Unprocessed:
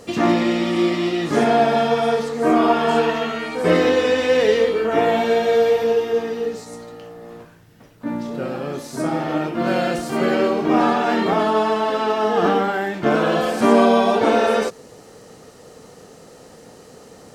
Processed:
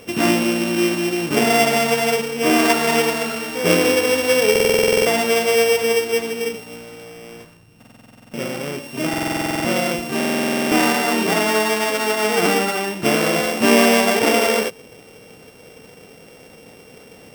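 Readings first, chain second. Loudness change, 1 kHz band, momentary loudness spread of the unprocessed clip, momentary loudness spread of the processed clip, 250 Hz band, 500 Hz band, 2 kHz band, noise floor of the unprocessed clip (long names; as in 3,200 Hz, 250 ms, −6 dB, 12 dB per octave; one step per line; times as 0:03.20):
+1.0 dB, −2.5 dB, 11 LU, 11 LU, −0.5 dB, −1.0 dB, +5.5 dB, −45 dBFS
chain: samples sorted by size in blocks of 16 samples
buffer that repeats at 0:04.51/0:07.78/0:09.09/0:10.16, samples 2,048, times 11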